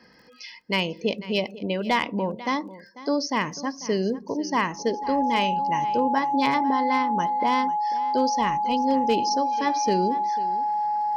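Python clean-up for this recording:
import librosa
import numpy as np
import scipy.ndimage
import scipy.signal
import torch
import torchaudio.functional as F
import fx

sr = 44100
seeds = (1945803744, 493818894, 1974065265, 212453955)

y = fx.fix_declip(x, sr, threshold_db=-13.0)
y = fx.fix_declick_ar(y, sr, threshold=6.5)
y = fx.notch(y, sr, hz=840.0, q=30.0)
y = fx.fix_echo_inverse(y, sr, delay_ms=494, level_db=-17.0)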